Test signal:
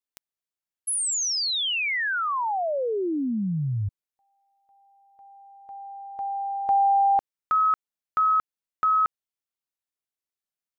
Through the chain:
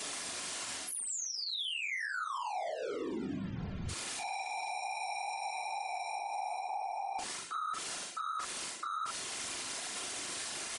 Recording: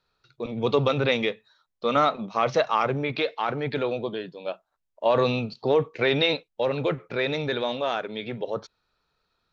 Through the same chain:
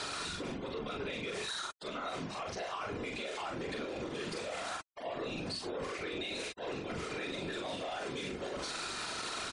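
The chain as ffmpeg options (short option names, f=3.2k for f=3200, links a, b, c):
-filter_complex "[0:a]aeval=exprs='val(0)+0.5*0.0501*sgn(val(0))':c=same,aresample=22050,aresample=44100,highpass=120,areverse,acompressor=threshold=-33dB:ratio=5:attack=44:release=193:knee=1:detection=rms,areverse,aecho=1:1:2.9:0.44,acrossover=split=1400[a][b];[a]asoftclip=type=tanh:threshold=-31dB[c];[c][b]amix=inputs=2:normalize=0,afftfilt=real='hypot(re,im)*cos(2*PI*random(0))':imag='hypot(re,im)*sin(2*PI*random(1))':win_size=512:overlap=0.75,aecho=1:1:31|42:0.178|0.668,afftfilt=real='re*gte(hypot(re,im),0.00178)':imag='im*gte(hypot(re,im),0.00178)':win_size=1024:overlap=0.75,alimiter=level_in=9dB:limit=-24dB:level=0:latency=1:release=64,volume=-9dB,volume=3dB"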